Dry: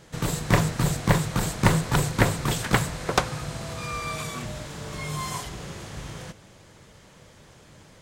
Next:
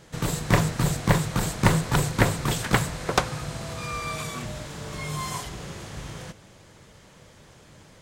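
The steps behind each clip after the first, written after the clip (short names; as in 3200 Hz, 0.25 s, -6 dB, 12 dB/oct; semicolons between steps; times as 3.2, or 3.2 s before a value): nothing audible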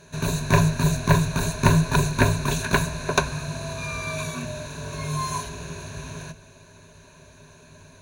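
ripple EQ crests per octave 1.5, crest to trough 15 dB; gain -1 dB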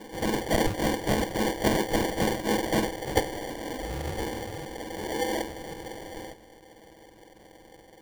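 spectrum mirrored in octaves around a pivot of 1800 Hz; pre-echo 0.278 s -19.5 dB; sample-and-hold 34×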